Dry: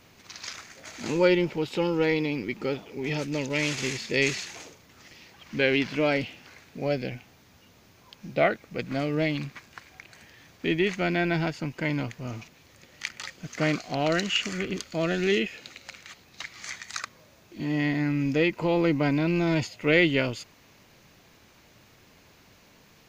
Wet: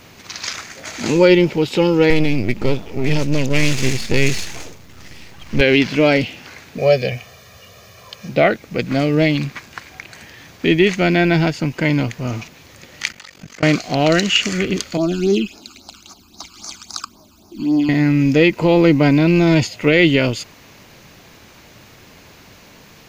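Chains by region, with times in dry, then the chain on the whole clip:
2.10–5.61 s: partial rectifier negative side -12 dB + bass shelf 160 Hz +11 dB
6.78–8.29 s: high-pass 80 Hz + peaking EQ 170 Hz -5 dB 0.82 oct + comb 1.7 ms, depth 91%
13.12–13.63 s: compression, threshold -40 dBFS + AM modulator 47 Hz, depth 95%
14.97–17.89 s: peaking EQ 140 Hz +3 dB 1.5 oct + phase shifter stages 12, 3.7 Hz, lowest notch 600–3100 Hz + static phaser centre 500 Hz, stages 6
whole clip: dynamic bell 1.2 kHz, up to -4 dB, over -39 dBFS, Q 0.73; loudness maximiser +13 dB; trim -1 dB

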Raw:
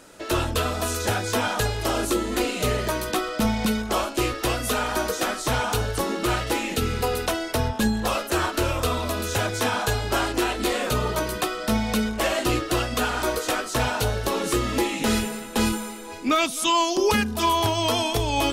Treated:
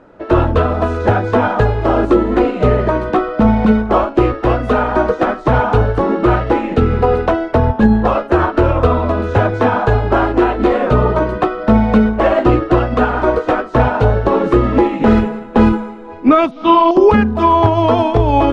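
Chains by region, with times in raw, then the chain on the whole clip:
16.51–16.91 s: steep low-pass 5.2 kHz + flutter echo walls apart 7.7 m, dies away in 0.79 s
whole clip: low-pass 1.2 kHz 12 dB/octave; loudness maximiser +15.5 dB; upward expansion 1.5:1, over -23 dBFS

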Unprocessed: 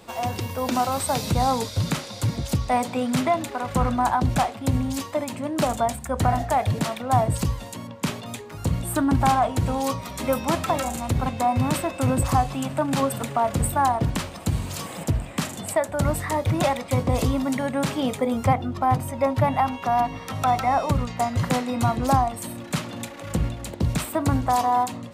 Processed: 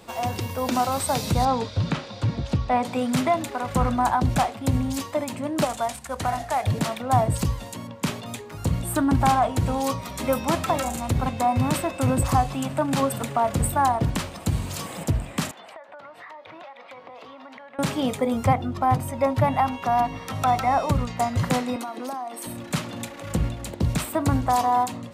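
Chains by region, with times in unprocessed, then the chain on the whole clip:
1.45–2.85 s: low-pass 3.6 kHz + band-stop 2.1 kHz, Q 17
5.65–6.64 s: CVSD coder 64 kbps + bass shelf 460 Hz -10.5 dB
15.51–17.79 s: high-pass 750 Hz + distance through air 310 m + compression 16:1, threshold -38 dBFS
21.76–22.46 s: steep high-pass 250 Hz + compression 5:1, threshold -29 dBFS + band-stop 7.3 kHz, Q 7.9
whole clip: none

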